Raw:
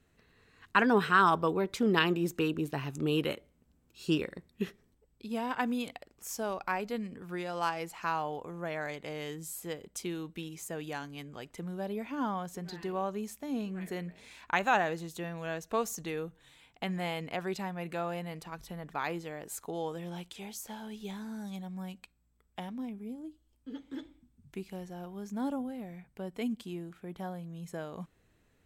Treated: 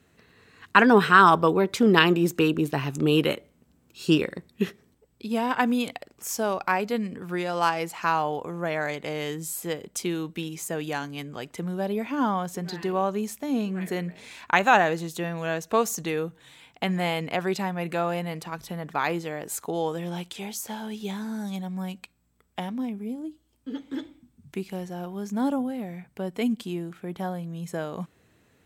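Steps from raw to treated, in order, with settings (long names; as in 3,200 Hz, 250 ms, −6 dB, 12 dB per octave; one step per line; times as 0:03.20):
high-pass filter 88 Hz
level +8.5 dB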